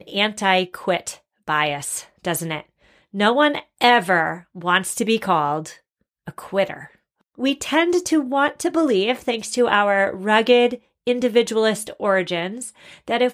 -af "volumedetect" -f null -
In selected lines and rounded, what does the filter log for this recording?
mean_volume: -20.9 dB
max_volume: -2.2 dB